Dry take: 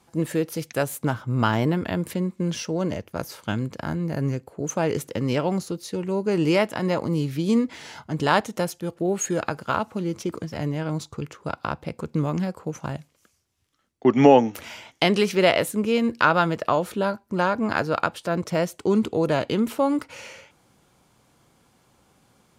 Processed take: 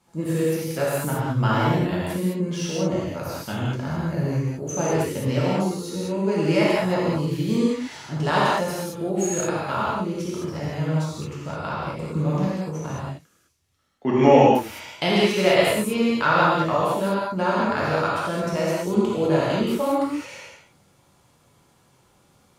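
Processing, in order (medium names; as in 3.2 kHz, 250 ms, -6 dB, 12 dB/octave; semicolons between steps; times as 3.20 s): gated-style reverb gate 240 ms flat, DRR -7.5 dB; trim -6.5 dB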